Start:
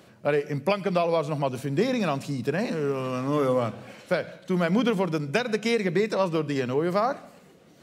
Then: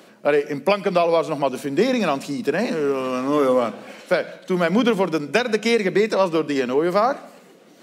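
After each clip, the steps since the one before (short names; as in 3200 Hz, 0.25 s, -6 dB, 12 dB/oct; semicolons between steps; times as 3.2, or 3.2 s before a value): HPF 200 Hz 24 dB/oct; gain +6 dB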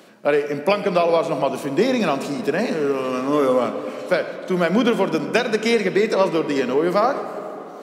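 digital reverb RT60 3.8 s, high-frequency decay 0.45×, pre-delay 5 ms, DRR 9.5 dB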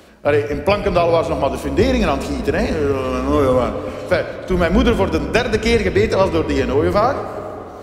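octaver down 2 oct, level -2 dB; gain +2.5 dB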